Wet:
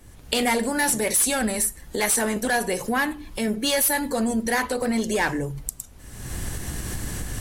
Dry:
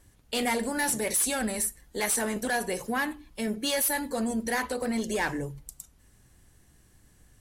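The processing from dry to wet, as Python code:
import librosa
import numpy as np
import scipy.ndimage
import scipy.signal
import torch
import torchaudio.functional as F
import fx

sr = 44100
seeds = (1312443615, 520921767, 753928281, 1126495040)

y = fx.recorder_agc(x, sr, target_db=-26.5, rise_db_per_s=43.0, max_gain_db=30)
y = fx.dmg_noise_colour(y, sr, seeds[0], colour='brown', level_db=-54.0)
y = y * librosa.db_to_amplitude(5.5)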